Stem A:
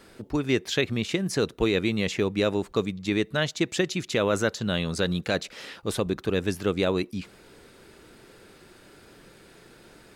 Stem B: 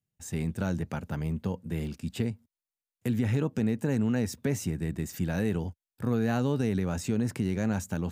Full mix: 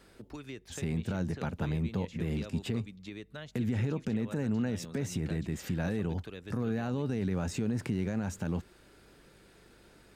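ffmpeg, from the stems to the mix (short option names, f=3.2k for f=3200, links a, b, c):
-filter_complex "[0:a]acrossover=split=170|1500|3700[a][b][c][d];[a]acompressor=threshold=-44dB:ratio=4[e];[b]acompressor=threshold=-38dB:ratio=4[f];[c]acompressor=threshold=-46dB:ratio=4[g];[d]acompressor=threshold=-54dB:ratio=4[h];[e][f][g][h]amix=inputs=4:normalize=0,aeval=exprs='val(0)+0.00141*(sin(2*PI*50*n/s)+sin(2*PI*2*50*n/s)/2+sin(2*PI*3*50*n/s)/3+sin(2*PI*4*50*n/s)/4+sin(2*PI*5*50*n/s)/5)':c=same,volume=-7.5dB[i];[1:a]highshelf=f=8.4k:g=-12,adelay=500,volume=2dB[j];[i][j]amix=inputs=2:normalize=0,alimiter=limit=-23dB:level=0:latency=1:release=112"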